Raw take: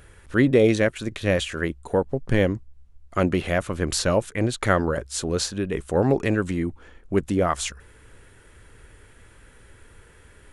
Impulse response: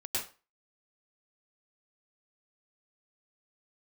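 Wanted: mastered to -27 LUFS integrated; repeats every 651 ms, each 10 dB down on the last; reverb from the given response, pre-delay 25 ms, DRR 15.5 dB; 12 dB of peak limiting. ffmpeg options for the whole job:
-filter_complex "[0:a]alimiter=limit=0.133:level=0:latency=1,aecho=1:1:651|1302|1953|2604:0.316|0.101|0.0324|0.0104,asplit=2[s0][s1];[1:a]atrim=start_sample=2205,adelay=25[s2];[s1][s2]afir=irnorm=-1:irlink=0,volume=0.106[s3];[s0][s3]amix=inputs=2:normalize=0,volume=1.26"

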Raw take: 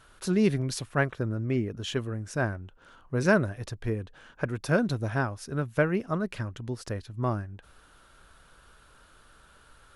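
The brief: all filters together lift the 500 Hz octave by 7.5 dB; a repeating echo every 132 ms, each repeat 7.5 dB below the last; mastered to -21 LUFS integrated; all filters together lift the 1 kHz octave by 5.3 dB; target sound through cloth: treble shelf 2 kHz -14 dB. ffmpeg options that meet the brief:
-af "equalizer=f=500:t=o:g=8.5,equalizer=f=1000:t=o:g=8,highshelf=f=2000:g=-14,aecho=1:1:132|264|396|528|660:0.422|0.177|0.0744|0.0312|0.0131,volume=1.58"

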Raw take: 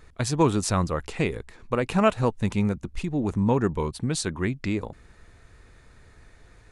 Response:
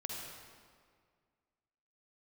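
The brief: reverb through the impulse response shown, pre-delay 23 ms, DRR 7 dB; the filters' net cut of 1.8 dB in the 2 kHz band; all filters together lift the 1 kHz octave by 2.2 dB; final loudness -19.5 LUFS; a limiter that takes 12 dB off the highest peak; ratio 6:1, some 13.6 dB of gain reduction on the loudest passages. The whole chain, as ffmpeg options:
-filter_complex "[0:a]equalizer=f=1000:t=o:g=3.5,equalizer=f=2000:t=o:g=-3.5,acompressor=threshold=0.0355:ratio=6,alimiter=level_in=1.68:limit=0.0631:level=0:latency=1,volume=0.596,asplit=2[s0][s1];[1:a]atrim=start_sample=2205,adelay=23[s2];[s1][s2]afir=irnorm=-1:irlink=0,volume=0.422[s3];[s0][s3]amix=inputs=2:normalize=0,volume=8.41"

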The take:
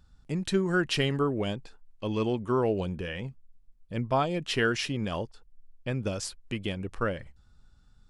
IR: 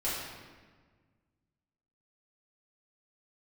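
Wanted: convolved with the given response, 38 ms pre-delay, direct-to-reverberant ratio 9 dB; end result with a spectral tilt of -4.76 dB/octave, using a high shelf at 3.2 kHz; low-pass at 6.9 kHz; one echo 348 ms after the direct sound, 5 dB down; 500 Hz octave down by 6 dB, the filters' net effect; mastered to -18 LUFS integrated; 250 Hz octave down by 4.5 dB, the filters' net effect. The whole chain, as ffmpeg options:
-filter_complex "[0:a]lowpass=6900,equalizer=f=250:t=o:g=-4.5,equalizer=f=500:t=o:g=-6,highshelf=f=3200:g=-8.5,aecho=1:1:348:0.562,asplit=2[s0][s1];[1:a]atrim=start_sample=2205,adelay=38[s2];[s1][s2]afir=irnorm=-1:irlink=0,volume=0.158[s3];[s0][s3]amix=inputs=2:normalize=0,volume=5.62"

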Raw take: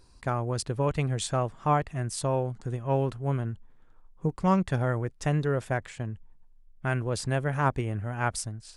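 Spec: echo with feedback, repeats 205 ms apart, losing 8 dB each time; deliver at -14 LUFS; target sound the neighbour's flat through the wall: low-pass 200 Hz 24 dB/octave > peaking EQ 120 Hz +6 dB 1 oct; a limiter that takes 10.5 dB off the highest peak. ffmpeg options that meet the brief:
-af "alimiter=limit=0.0708:level=0:latency=1,lowpass=f=200:w=0.5412,lowpass=f=200:w=1.3066,equalizer=f=120:t=o:w=1:g=6,aecho=1:1:205|410|615|820|1025:0.398|0.159|0.0637|0.0255|0.0102,volume=7.5"

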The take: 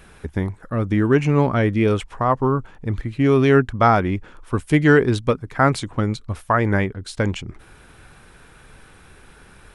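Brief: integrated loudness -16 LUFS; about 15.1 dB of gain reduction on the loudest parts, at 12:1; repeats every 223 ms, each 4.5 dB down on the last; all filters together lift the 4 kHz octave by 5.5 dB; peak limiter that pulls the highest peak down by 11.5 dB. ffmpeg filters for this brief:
-af "equalizer=f=4000:t=o:g=7,acompressor=threshold=0.0562:ratio=12,alimiter=limit=0.0631:level=0:latency=1,aecho=1:1:223|446|669|892|1115|1338|1561|1784|2007:0.596|0.357|0.214|0.129|0.0772|0.0463|0.0278|0.0167|0.01,volume=7.08"

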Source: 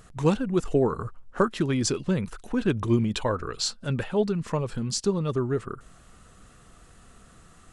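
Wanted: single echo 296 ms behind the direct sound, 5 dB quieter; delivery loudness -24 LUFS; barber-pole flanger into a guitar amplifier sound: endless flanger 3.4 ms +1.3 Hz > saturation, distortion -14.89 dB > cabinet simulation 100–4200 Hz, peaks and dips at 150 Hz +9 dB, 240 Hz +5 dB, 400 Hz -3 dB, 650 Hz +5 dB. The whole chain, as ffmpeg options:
-filter_complex "[0:a]aecho=1:1:296:0.562,asplit=2[s0][s1];[s1]adelay=3.4,afreqshift=1.3[s2];[s0][s2]amix=inputs=2:normalize=1,asoftclip=threshold=0.0891,highpass=100,equalizer=f=150:t=q:w=4:g=9,equalizer=f=240:t=q:w=4:g=5,equalizer=f=400:t=q:w=4:g=-3,equalizer=f=650:t=q:w=4:g=5,lowpass=f=4200:w=0.5412,lowpass=f=4200:w=1.3066,volume=1.78"

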